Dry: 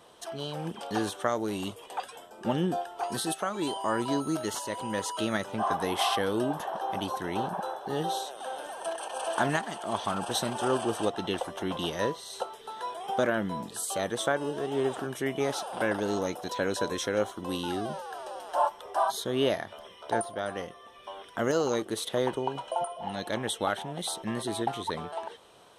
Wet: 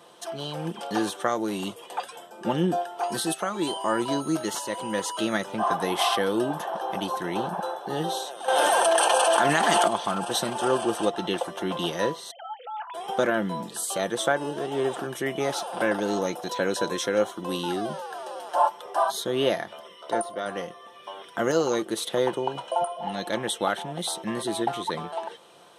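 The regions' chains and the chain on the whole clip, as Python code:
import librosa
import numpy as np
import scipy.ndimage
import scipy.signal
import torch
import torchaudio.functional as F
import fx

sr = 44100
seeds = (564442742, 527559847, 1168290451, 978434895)

y = fx.chain(x, sr, fx.low_shelf(hz=230.0, db=-10.0),
    fx.env_flatten(amount_pct=100), at=(8.48, 9.88))
y = fx.chain(y, sr, fx.sine_speech(),
    fx.over_compress(threshold_db=-40.0, ratio=-1.0), at=(12.31, 12.94))
y = fx.chain(y, sr, fx.low_shelf(hz=190.0, db=-5.5),
    fx.notch_comb(f0_hz=820.0), at=(19.81, 20.46))
y = scipy.signal.sosfilt(scipy.signal.butter(2, 140.0, 'highpass', fs=sr, output='sos'), y)
y = y + 0.33 * np.pad(y, (int(5.8 * sr / 1000.0), 0))[:len(y)]
y = y * 10.0 ** (3.0 / 20.0)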